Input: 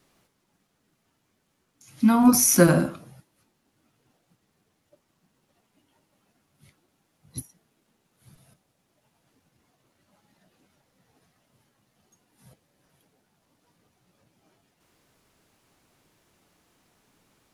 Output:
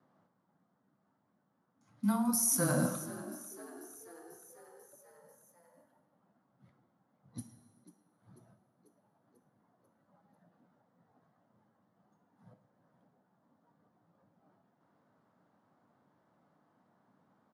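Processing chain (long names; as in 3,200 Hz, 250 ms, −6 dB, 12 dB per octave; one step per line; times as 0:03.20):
high-pass filter 160 Hz 24 dB per octave
low-pass that shuts in the quiet parts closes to 1,300 Hz, open at −25.5 dBFS
graphic EQ with 15 bands 400 Hz −9 dB, 2,500 Hz −12 dB, 10,000 Hz +9 dB
reversed playback
downward compressor 16 to 1, threshold −27 dBFS, peak gain reduction 17 dB
reversed playback
frequency shifter −14 Hz
on a send: echo with shifted repeats 492 ms, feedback 62%, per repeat +60 Hz, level −16 dB
on the sum: reverb whose tail is shaped and stops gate 460 ms falling, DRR 9.5 dB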